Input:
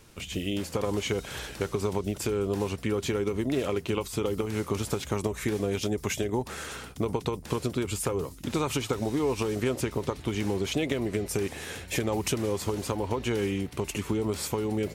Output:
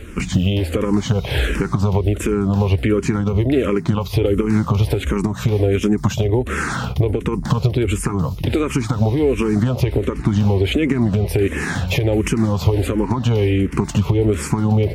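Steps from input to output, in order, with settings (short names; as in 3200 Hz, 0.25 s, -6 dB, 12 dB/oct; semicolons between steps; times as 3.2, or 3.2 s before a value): compressor, threshold -33 dBFS, peak gain reduction 10 dB; tone controls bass +8 dB, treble -10 dB; maximiser +22 dB; endless phaser -1.4 Hz; gain -2.5 dB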